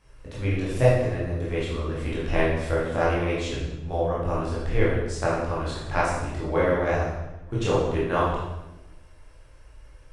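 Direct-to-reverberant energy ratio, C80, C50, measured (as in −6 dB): −8.0 dB, 3.5 dB, 0.0 dB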